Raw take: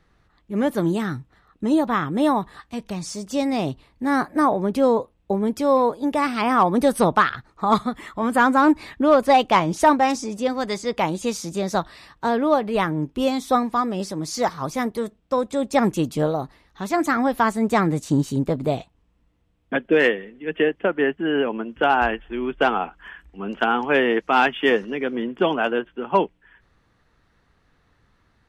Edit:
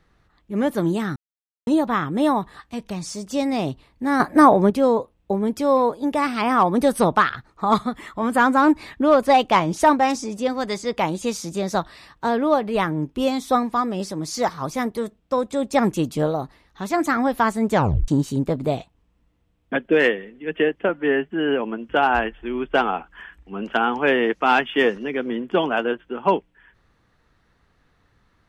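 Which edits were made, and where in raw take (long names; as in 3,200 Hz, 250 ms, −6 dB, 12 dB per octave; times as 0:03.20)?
0:01.16–0:01.67: silence
0:04.20–0:04.70: clip gain +6.5 dB
0:17.71: tape stop 0.37 s
0:20.89–0:21.15: time-stretch 1.5×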